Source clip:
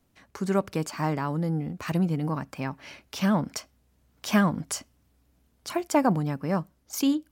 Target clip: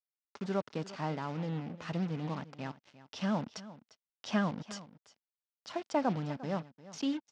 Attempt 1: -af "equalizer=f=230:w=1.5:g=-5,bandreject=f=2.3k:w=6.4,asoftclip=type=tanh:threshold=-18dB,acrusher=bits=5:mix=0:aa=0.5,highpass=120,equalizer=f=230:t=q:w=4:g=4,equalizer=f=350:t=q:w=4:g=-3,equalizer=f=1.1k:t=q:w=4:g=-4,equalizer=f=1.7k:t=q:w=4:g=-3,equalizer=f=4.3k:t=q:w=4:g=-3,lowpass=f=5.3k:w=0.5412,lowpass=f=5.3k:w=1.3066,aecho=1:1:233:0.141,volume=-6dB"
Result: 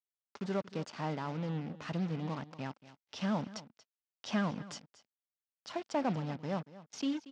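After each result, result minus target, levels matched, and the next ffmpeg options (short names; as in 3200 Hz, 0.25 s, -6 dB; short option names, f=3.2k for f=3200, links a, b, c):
soft clip: distortion +18 dB; echo 0.117 s early
-af "equalizer=f=230:w=1.5:g=-5,bandreject=f=2.3k:w=6.4,asoftclip=type=tanh:threshold=-6.5dB,acrusher=bits=5:mix=0:aa=0.5,highpass=120,equalizer=f=230:t=q:w=4:g=4,equalizer=f=350:t=q:w=4:g=-3,equalizer=f=1.1k:t=q:w=4:g=-4,equalizer=f=1.7k:t=q:w=4:g=-3,equalizer=f=4.3k:t=q:w=4:g=-3,lowpass=f=5.3k:w=0.5412,lowpass=f=5.3k:w=1.3066,aecho=1:1:233:0.141,volume=-6dB"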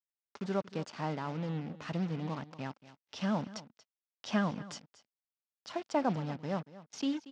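echo 0.117 s early
-af "equalizer=f=230:w=1.5:g=-5,bandreject=f=2.3k:w=6.4,asoftclip=type=tanh:threshold=-6.5dB,acrusher=bits=5:mix=0:aa=0.5,highpass=120,equalizer=f=230:t=q:w=4:g=4,equalizer=f=350:t=q:w=4:g=-3,equalizer=f=1.1k:t=q:w=4:g=-4,equalizer=f=1.7k:t=q:w=4:g=-3,equalizer=f=4.3k:t=q:w=4:g=-3,lowpass=f=5.3k:w=0.5412,lowpass=f=5.3k:w=1.3066,aecho=1:1:350:0.141,volume=-6dB"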